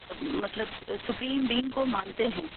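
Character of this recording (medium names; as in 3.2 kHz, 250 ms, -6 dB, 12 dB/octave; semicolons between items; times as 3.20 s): a quantiser's noise floor 6-bit, dither triangular; tremolo saw up 2.5 Hz, depth 65%; Opus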